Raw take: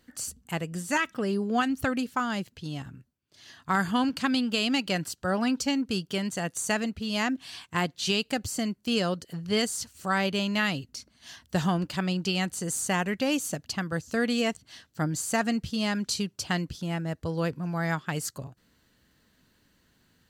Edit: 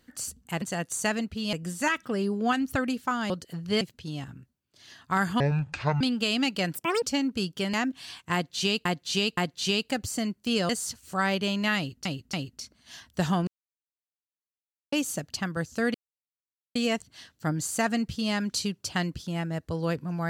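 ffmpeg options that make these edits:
-filter_complex "[0:a]asplit=18[a][b][c][d][e][f][g][h][i][j][k][l][m][n][o][p][q][r];[a]atrim=end=0.622[s];[b]atrim=start=6.268:end=7.182[t];[c]atrim=start=0.618:end=2.392[u];[d]atrim=start=9.098:end=9.612[v];[e]atrim=start=2.388:end=3.984[w];[f]atrim=start=3.98:end=4.32,asetpts=PTS-STARTPTS,asetrate=24696,aresample=44100[x];[g]atrim=start=4.316:end=5.064[y];[h]atrim=start=5.06:end=5.56,asetpts=PTS-STARTPTS,asetrate=79821,aresample=44100,atrim=end_sample=12182,asetpts=PTS-STARTPTS[z];[i]atrim=start=5.556:end=6.272[aa];[j]atrim=start=7.178:end=8.302[ab];[k]atrim=start=7.778:end=8.302[ac];[l]atrim=start=7.778:end=9.102[ad];[m]atrim=start=9.608:end=10.972[ae];[n]atrim=start=10.688:end=10.972[af];[o]atrim=start=10.688:end=11.83,asetpts=PTS-STARTPTS,afade=t=out:st=1.138:d=0.004:c=hsin[ag];[p]atrim=start=11.83:end=13.28,asetpts=PTS-STARTPTS,volume=0[ah];[q]atrim=start=13.28:end=14.3,asetpts=PTS-STARTPTS,afade=t=in:d=0.004:c=hsin,afade=t=out:st=1.016:d=0.004:c=hsin,apad=pad_dur=0.81[ai];[r]atrim=start=14.3,asetpts=PTS-STARTPTS,afade=t=in:d=0.004:c=hsin[aj];[s][t]acrossfade=d=0.004:c1=hsin:c2=hsin[ak];[ak][u]acrossfade=d=0.004:c1=hsin:c2=hsin[al];[al][v]acrossfade=d=0.004:c1=hsin:c2=hsin[am];[am][w]acrossfade=d=0.004:c1=hsin:c2=hsin[an];[an][x]acrossfade=d=0.004:c1=hsin:c2=hsin[ao];[ao][y]acrossfade=d=0.004:c1=hsin:c2=hsin[ap];[ap][z]acrossfade=d=0.004:c1=hsin:c2=hsin[aq];[aq][aa]acrossfade=d=0.004:c1=hsin:c2=hsin[ar];[ar][ab]acrossfade=d=0.004:c1=hsin:c2=hsin[as];[as][ac]acrossfade=d=0.004:c1=hsin:c2=hsin[at];[at][ad]acrossfade=d=0.004:c1=hsin:c2=hsin[au];[au][ae]acrossfade=d=0.004:c1=hsin:c2=hsin[av];[av][af]acrossfade=d=0.004:c1=hsin:c2=hsin[aw];[ag][ah][ai][aj]concat=n=4:v=0:a=1[ax];[aw][ax]acrossfade=d=0.004:c1=hsin:c2=hsin"

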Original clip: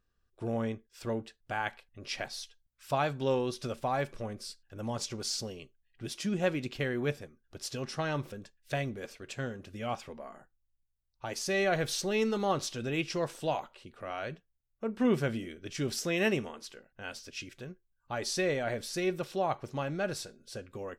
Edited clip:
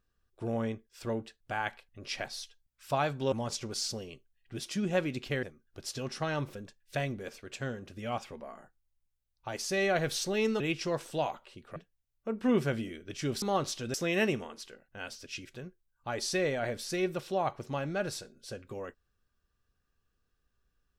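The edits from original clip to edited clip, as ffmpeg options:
-filter_complex "[0:a]asplit=7[a][b][c][d][e][f][g];[a]atrim=end=3.322[h];[b]atrim=start=4.808:end=6.922[i];[c]atrim=start=7.198:end=12.372[j];[d]atrim=start=12.888:end=14.052[k];[e]atrim=start=14.318:end=15.982[l];[f]atrim=start=12.368:end=12.892[m];[g]atrim=start=15.978[n];[h][i]acrossfade=d=0.004:c1=hsin:c2=hsin[o];[o][j]acrossfade=d=0.004:c1=hsin:c2=hsin[p];[p][k]acrossfade=d=0.004:c1=hsin:c2=hsin[q];[q][l]acrossfade=d=0.004:c1=hsin:c2=hsin[r];[r][m]acrossfade=d=0.004:c1=hsin:c2=hsin[s];[s][n]acrossfade=d=0.004:c1=hsin:c2=hsin"

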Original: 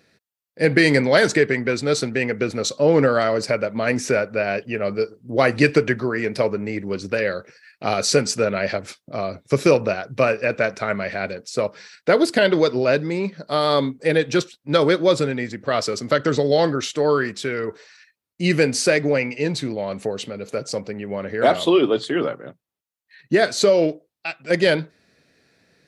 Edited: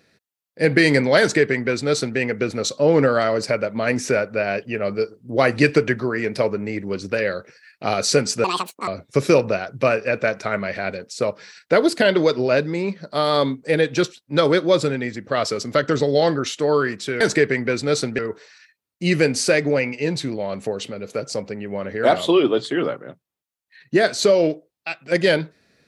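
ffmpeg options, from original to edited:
-filter_complex "[0:a]asplit=5[a][b][c][d][e];[a]atrim=end=8.444[f];[b]atrim=start=8.44:end=9.24,asetpts=PTS-STARTPTS,asetrate=81144,aresample=44100[g];[c]atrim=start=9.236:end=17.572[h];[d]atrim=start=1.198:end=2.182[i];[e]atrim=start=17.568[j];[f][g]acrossfade=d=0.004:c1=hsin:c2=hsin[k];[k][h]acrossfade=d=0.004:c1=hsin:c2=hsin[l];[l][i]acrossfade=d=0.004:c1=hsin:c2=hsin[m];[m][j]acrossfade=d=0.004:c1=hsin:c2=hsin"

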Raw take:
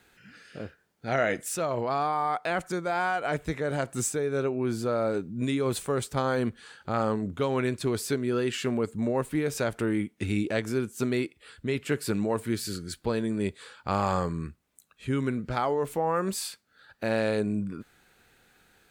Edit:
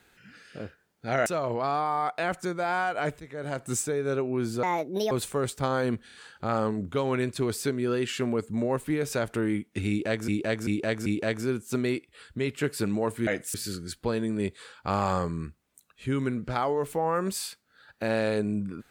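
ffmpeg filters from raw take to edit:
-filter_complex "[0:a]asplit=13[a][b][c][d][e][f][g][h][i][j][k][l][m];[a]atrim=end=1.262[n];[b]atrim=start=1.528:end=3.47,asetpts=PTS-STARTPTS,afade=t=out:st=1.938:d=0.004:c=hsin:silence=0.149624[o];[c]atrim=start=3.47:end=4.904,asetpts=PTS-STARTPTS,afade=t=in:d=0.51:silence=0.149624[p];[d]atrim=start=4.9:end=5.65,asetpts=PTS-STARTPTS,asetrate=68796,aresample=44100[q];[e]atrim=start=5.646:end=6.622[r];[f]atrim=start=6.588:end=6.622[s];[g]atrim=start=6.588:end=6.622[t];[h]atrim=start=6.588:end=10.732[u];[i]atrim=start=10.338:end=10.732[v];[j]atrim=start=10.338:end=10.732[w];[k]atrim=start=10.338:end=12.552[x];[l]atrim=start=1.258:end=1.532[y];[m]atrim=start=12.548[z];[o][p]concat=n=2:v=0:a=1[aa];[n][aa]acrossfade=d=0.004:c1=hsin:c2=hsin[ab];[ab][q]acrossfade=d=0.004:c1=hsin:c2=hsin[ac];[ac][r]acrossfade=d=0.004:c1=hsin:c2=hsin[ad];[ad][s]acrossfade=d=0.004:c1=hsin:c2=hsin[ae];[ae][t]acrossfade=d=0.004:c1=hsin:c2=hsin[af];[af][u]acrossfade=d=0.004:c1=hsin:c2=hsin[ag];[ag][v]acrossfade=d=0.004:c1=hsin:c2=hsin[ah];[ah][w]acrossfade=d=0.004:c1=hsin:c2=hsin[ai];[ai][x]acrossfade=d=0.004:c1=hsin:c2=hsin[aj];[aj][y]acrossfade=d=0.004:c1=hsin:c2=hsin[ak];[ak][z]acrossfade=d=0.004:c1=hsin:c2=hsin"

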